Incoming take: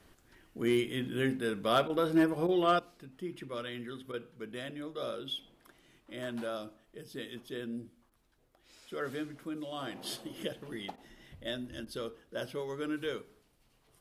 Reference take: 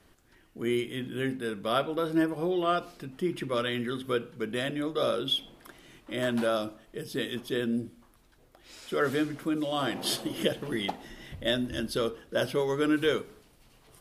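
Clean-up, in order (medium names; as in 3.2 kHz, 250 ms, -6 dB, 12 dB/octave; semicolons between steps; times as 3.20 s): clip repair -19 dBFS; interpolate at 1.88/2.47/4.12/8.10/10.96/11.85 s, 15 ms; trim 0 dB, from 2.79 s +10 dB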